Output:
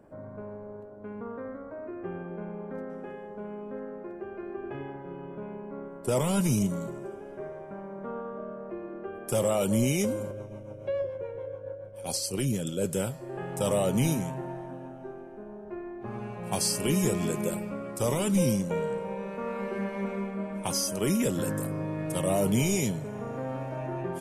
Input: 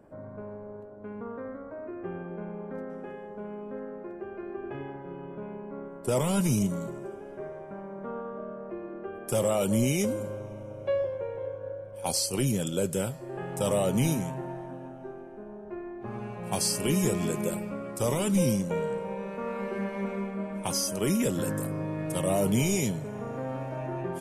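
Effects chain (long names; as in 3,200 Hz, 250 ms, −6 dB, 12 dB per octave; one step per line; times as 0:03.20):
0:10.31–0:12.85: rotating-speaker cabinet horn 7 Hz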